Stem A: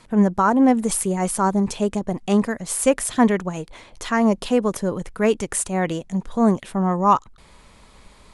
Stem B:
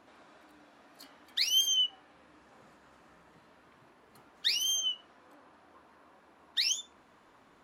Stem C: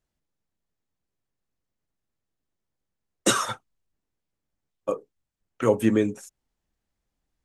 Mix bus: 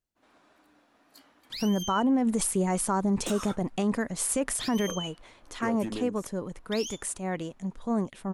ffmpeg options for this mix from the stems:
-filter_complex "[0:a]adelay=1500,volume=-3dB,afade=t=out:st=4.69:d=0.53:silence=0.446684[a];[1:a]agate=range=-33dB:threshold=-56dB:ratio=3:detection=peak,alimiter=level_in=2.5dB:limit=-24dB:level=0:latency=1:release=12,volume=-2.5dB,adelay=150,volume=-4dB[b];[2:a]aeval=exprs='0.447*sin(PI/2*1.58*val(0)/0.447)':c=same,volume=-16dB[c];[b][c]amix=inputs=2:normalize=0,highshelf=f=7.2k:g=5,acompressor=threshold=-33dB:ratio=5,volume=0dB[d];[a][d]amix=inputs=2:normalize=0,equalizer=f=270:t=o:w=0.36:g=3,alimiter=limit=-17.5dB:level=0:latency=1:release=51"

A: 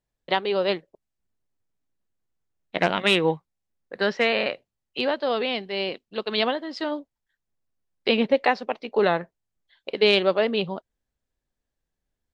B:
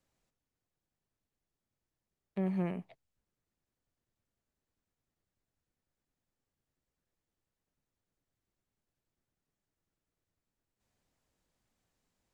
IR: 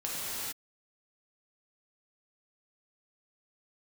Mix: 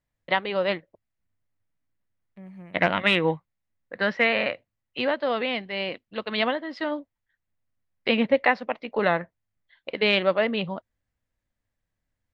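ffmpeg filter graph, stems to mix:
-filter_complex "[0:a]bass=f=250:g=-1,treble=f=4k:g=-13,volume=1dB[a];[1:a]volume=-10.5dB[b];[a][b]amix=inputs=2:normalize=0,equalizer=f=100:t=o:w=0.33:g=9,equalizer=f=400:t=o:w=0.33:g=-9,equalizer=f=800:t=o:w=0.33:g=-3,equalizer=f=2k:t=o:w=0.33:g=5"

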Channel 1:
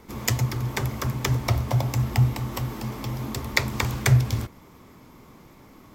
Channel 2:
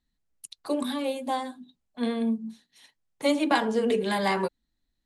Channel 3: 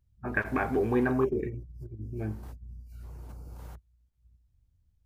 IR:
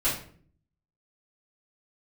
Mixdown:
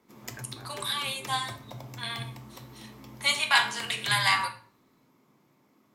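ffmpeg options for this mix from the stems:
-filter_complex "[0:a]highpass=f=130:w=0.5412,highpass=f=130:w=1.3066,volume=-16.5dB,asplit=2[a][b];[b]volume=-17.5dB[c];[1:a]highpass=f=990:w=0.5412,highpass=f=990:w=1.3066,adynamicequalizer=threshold=0.00708:dfrequency=1800:dqfactor=0.7:tfrequency=1800:tqfactor=0.7:attack=5:release=100:ratio=0.375:range=3:mode=boostabove:tftype=highshelf,volume=1.5dB,asplit=3[d][e][f];[e]volume=-13dB[g];[2:a]volume=-18.5dB[h];[f]apad=whole_len=222988[i];[h][i]sidechaincompress=threshold=-43dB:ratio=8:attack=23:release=296[j];[3:a]atrim=start_sample=2205[k];[c][g]amix=inputs=2:normalize=0[l];[l][k]afir=irnorm=-1:irlink=0[m];[a][d][j][m]amix=inputs=4:normalize=0"

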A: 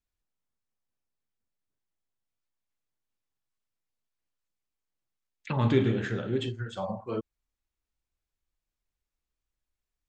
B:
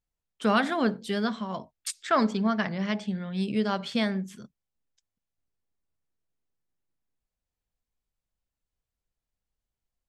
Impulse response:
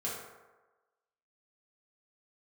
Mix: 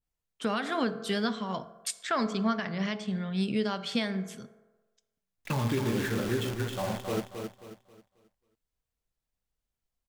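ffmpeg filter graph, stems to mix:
-filter_complex "[0:a]alimiter=limit=-19dB:level=0:latency=1:release=242,acrusher=bits=7:dc=4:mix=0:aa=0.000001,volume=0.5dB,asplit=2[a][b];[b]volume=-6.5dB[c];[1:a]adynamicequalizer=threshold=0.0112:dfrequency=1700:dqfactor=0.7:tfrequency=1700:tqfactor=0.7:attack=5:release=100:ratio=0.375:range=2:mode=boostabove:tftype=highshelf,volume=-1dB,asplit=2[d][e];[e]volume=-15dB[f];[2:a]atrim=start_sample=2205[g];[f][g]afir=irnorm=-1:irlink=0[h];[c]aecho=0:1:269|538|807|1076|1345:1|0.34|0.116|0.0393|0.0134[i];[a][d][h][i]amix=inputs=4:normalize=0,alimiter=limit=-19dB:level=0:latency=1:release=256"

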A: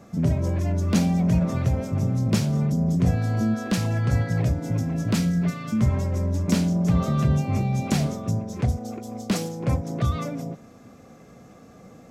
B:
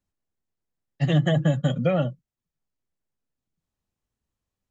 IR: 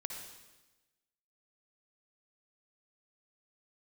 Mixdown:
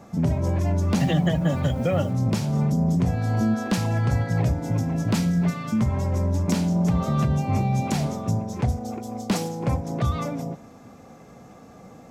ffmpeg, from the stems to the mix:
-filter_complex "[0:a]equalizer=f=870:t=o:w=0.44:g=7.5,alimiter=limit=-14dB:level=0:latency=1:release=264,volume=0dB,asplit=2[a][b];[b]volume=-16dB[c];[1:a]lowshelf=f=83:g=-9.5,acrusher=bits=8:mix=0:aa=0.000001,volume=2.5dB[d];[2:a]atrim=start_sample=2205[e];[c][e]afir=irnorm=-1:irlink=0[f];[a][d][f]amix=inputs=3:normalize=0,alimiter=limit=-12.5dB:level=0:latency=1:release=228"

